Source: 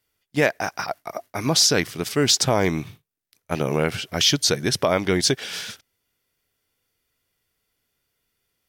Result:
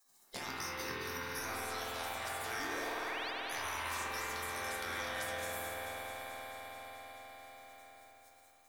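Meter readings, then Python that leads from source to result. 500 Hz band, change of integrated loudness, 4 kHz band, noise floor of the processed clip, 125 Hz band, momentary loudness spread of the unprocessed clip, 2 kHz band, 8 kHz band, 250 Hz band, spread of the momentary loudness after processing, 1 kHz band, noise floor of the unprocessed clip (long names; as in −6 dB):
−19.5 dB, −18.0 dB, −20.5 dB, −65 dBFS, −25.0 dB, 14 LU, −10.0 dB, −20.0 dB, −24.0 dB, 14 LU, −9.5 dB, −80 dBFS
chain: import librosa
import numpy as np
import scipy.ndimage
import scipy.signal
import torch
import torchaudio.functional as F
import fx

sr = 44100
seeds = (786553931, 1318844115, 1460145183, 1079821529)

y = fx.spec_gate(x, sr, threshold_db=-20, keep='weak')
y = fx.peak_eq(y, sr, hz=2800.0, db=-9.0, octaves=0.8)
y = fx.over_compress(y, sr, threshold_db=-42.0, ratio=-1.0)
y = fx.resonator_bank(y, sr, root=41, chord='major', decay_s=0.32)
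y = fx.spec_paint(y, sr, seeds[0], shape='rise', start_s=2.59, length_s=0.72, low_hz=250.0, high_hz=5100.0, level_db=-58.0)
y = fx.echo_alternate(y, sr, ms=109, hz=1000.0, feedback_pct=78, wet_db=-7.5)
y = fx.rev_spring(y, sr, rt60_s=3.4, pass_ms=(48,), chirp_ms=60, drr_db=-6.0)
y = fx.band_squash(y, sr, depth_pct=70)
y = F.gain(torch.from_numpy(y), 9.5).numpy()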